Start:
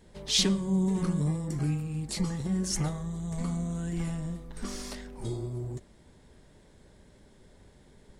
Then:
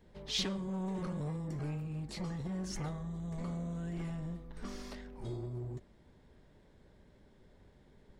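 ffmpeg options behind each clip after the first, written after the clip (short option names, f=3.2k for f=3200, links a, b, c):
-filter_complex "[0:a]acrossover=split=430[a][b];[a]asoftclip=type=hard:threshold=-31.5dB[c];[c][b]amix=inputs=2:normalize=0,equalizer=f=9.3k:w=0.7:g=-13,volume=-5dB"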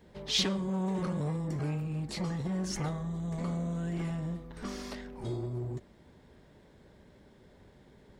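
-af "highpass=f=79:p=1,volume=6dB"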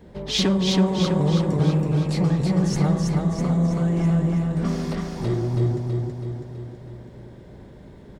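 -filter_complex "[0:a]tiltshelf=f=970:g=4,asplit=2[a][b];[b]aecho=0:1:326|652|978|1304|1630|1956|2282|2608:0.708|0.389|0.214|0.118|0.0648|0.0356|0.0196|0.0108[c];[a][c]amix=inputs=2:normalize=0,volume=8dB"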